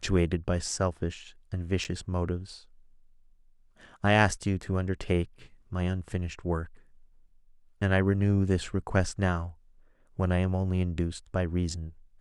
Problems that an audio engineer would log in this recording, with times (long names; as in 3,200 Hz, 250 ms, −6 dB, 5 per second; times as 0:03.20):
0:01.84–0:01.85: drop-out 8.6 ms